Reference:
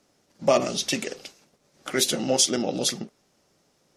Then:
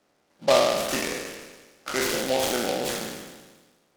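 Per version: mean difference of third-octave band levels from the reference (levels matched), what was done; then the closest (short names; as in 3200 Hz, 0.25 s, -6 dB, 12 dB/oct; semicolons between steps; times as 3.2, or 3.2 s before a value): 10.0 dB: spectral trails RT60 1.38 s; LPF 3100 Hz 24 dB/oct; low shelf 320 Hz -11 dB; noise-modulated delay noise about 3200 Hz, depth 0.075 ms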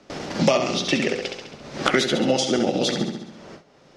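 7.0 dB: on a send: flutter echo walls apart 11.6 m, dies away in 0.6 s; on the sum: gate with hold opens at -54 dBFS; LPF 3900 Hz 12 dB/oct; three-band squash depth 100%; gain +4.5 dB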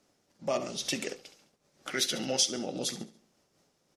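3.0 dB: spectral gain 1.89–2.47, 1300–6400 Hz +6 dB; in parallel at 0 dB: compressor, threshold -29 dBFS, peak gain reduction 16.5 dB; on the sum: feedback echo 70 ms, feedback 42%, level -15 dB; noise-modulated level, depth 65%; gain -8 dB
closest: third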